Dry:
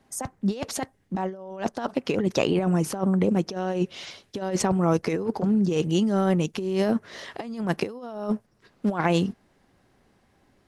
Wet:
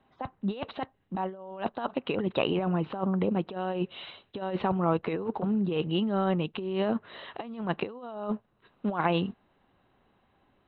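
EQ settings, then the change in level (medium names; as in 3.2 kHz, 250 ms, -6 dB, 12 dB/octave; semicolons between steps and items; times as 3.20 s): rippled Chebyshev low-pass 4 kHz, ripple 6 dB; 0.0 dB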